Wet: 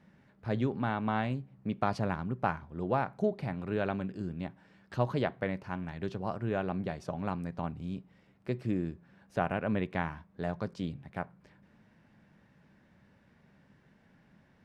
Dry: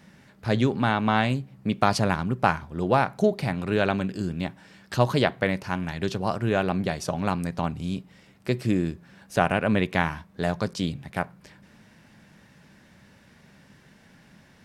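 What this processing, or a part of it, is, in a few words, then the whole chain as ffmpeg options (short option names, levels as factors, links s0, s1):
through cloth: -af "highshelf=f=3600:g=-16,volume=0.398"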